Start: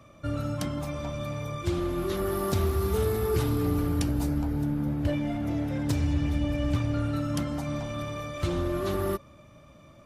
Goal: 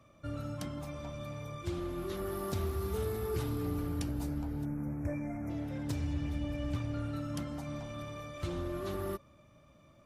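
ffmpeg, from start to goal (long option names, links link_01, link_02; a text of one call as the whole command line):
ffmpeg -i in.wav -filter_complex "[0:a]asettb=1/sr,asplit=3[link_01][link_02][link_03];[link_01]atrim=end=4.654[link_04];[link_02]atrim=start=4.65:end=5.5,asetpts=PTS-STARTPTS,afade=type=in:duration=0.004:curve=qsin,afade=type=out:start_time=0.846:duration=0.004:curve=qsin,asuperstop=centerf=3700:order=20:qfactor=1.3[link_05];[link_03]atrim=start=5.496[link_06];[link_04][link_05]acrossfade=duration=0.004:curve1=hsin:curve2=qsin[link_07];[link_07][link_06]acrossfade=duration=0.004:curve1=qsin:curve2=hsin,volume=-8.5dB" out.wav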